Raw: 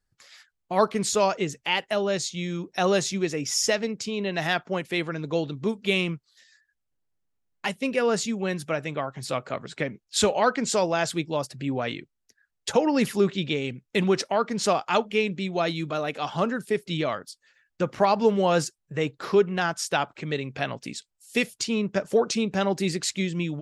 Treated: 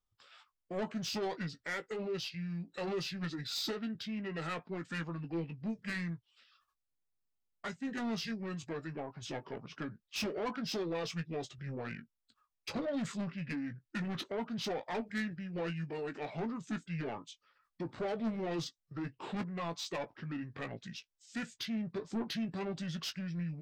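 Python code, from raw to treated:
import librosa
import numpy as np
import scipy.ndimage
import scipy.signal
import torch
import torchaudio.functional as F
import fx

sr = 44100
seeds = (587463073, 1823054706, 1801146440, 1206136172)

y = fx.formant_shift(x, sr, semitones=-6)
y = 10.0 ** (-23.5 / 20.0) * np.tanh(y / 10.0 ** (-23.5 / 20.0))
y = fx.doubler(y, sr, ms=18.0, db=-10)
y = y * librosa.db_to_amplitude(-9.0)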